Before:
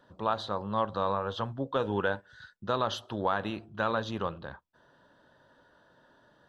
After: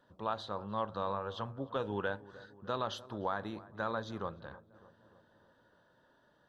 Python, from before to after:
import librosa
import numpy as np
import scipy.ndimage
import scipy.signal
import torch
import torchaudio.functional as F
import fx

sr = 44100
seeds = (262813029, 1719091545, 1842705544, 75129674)

p1 = fx.peak_eq(x, sr, hz=2800.0, db=-13.5, octaves=0.3, at=(2.98, 4.41))
p2 = p1 + fx.echo_filtered(p1, sr, ms=302, feedback_pct=62, hz=1500.0, wet_db=-18.0, dry=0)
y = p2 * librosa.db_to_amplitude(-6.5)